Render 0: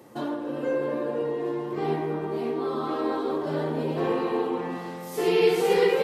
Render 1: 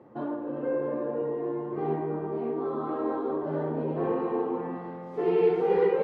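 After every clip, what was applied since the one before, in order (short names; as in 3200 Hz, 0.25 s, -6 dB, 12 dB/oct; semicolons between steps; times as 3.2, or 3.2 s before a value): LPF 1300 Hz 12 dB/oct; gain -2 dB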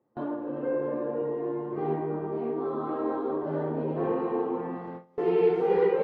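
gate with hold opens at -29 dBFS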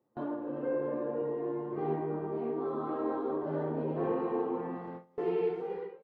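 ending faded out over 1.01 s; gain -3.5 dB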